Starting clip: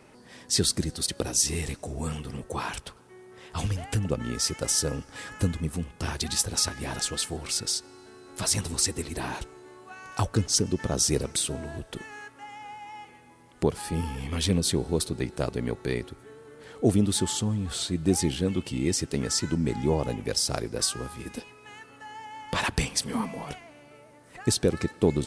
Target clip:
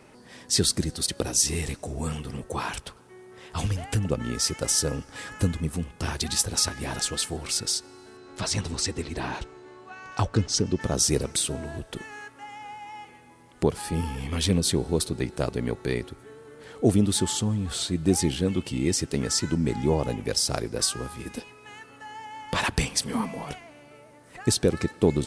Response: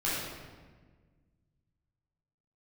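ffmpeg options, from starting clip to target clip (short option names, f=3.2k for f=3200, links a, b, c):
-filter_complex "[0:a]asettb=1/sr,asplit=3[a][b][c];[a]atrim=end=8.174[d];[b]atrim=start=8.17:end=10.81,asetpts=PTS-STARTPTS,afade=t=in:d=0.004:c=qsin,afade=t=out:st=2.636:d=0.004:c=qsin,lowpass=5.7k[e];[c]atrim=start=10.806[f];[d][e]acrossfade=d=0.004:c1=hsin:c2=qsin[g];[g][f]acrossfade=d=0.004:c1=qsin:c2=hsin,volume=1.5dB"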